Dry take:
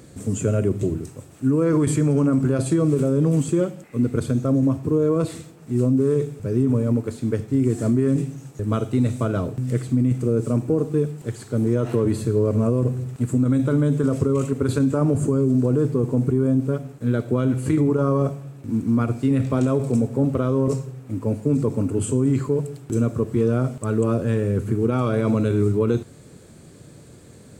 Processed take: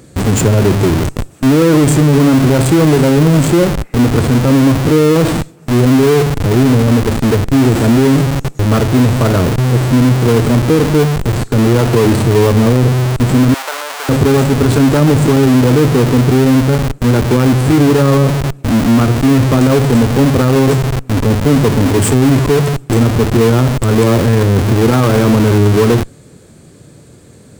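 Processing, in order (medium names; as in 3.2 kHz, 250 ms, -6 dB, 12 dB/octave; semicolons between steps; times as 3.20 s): in parallel at +0.5 dB: Schmitt trigger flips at -33 dBFS; 13.54–14.09 s: on the sum: high-pass 720 Hz 24 dB/octave; trim +5.5 dB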